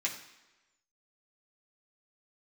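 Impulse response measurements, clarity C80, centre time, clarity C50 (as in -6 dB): 11.0 dB, 22 ms, 8.5 dB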